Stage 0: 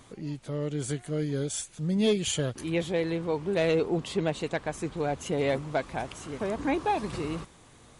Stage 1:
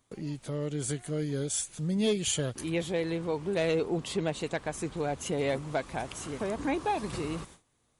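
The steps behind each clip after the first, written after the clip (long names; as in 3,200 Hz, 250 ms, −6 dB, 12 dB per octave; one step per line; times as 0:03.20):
in parallel at 0 dB: downward compressor, threshold −37 dBFS, peak gain reduction 15.5 dB
on the sum: noise gate with hold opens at −36 dBFS
high-shelf EQ 7,900 Hz +8 dB
level −4.5 dB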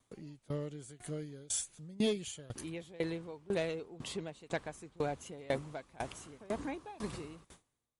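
tremolo with a ramp in dB decaying 2 Hz, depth 23 dB
level −1 dB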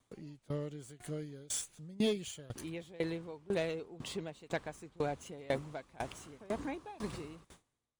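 running median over 3 samples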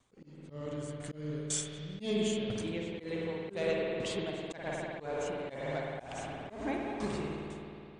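Chebyshev low-pass filter 9,100 Hz, order 6
spring reverb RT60 2.8 s, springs 53 ms, chirp 50 ms, DRR 0 dB
volume swells 199 ms
level +4 dB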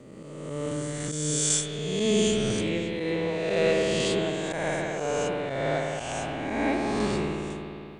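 peak hold with a rise ahead of every peak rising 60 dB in 1.69 s
level +6 dB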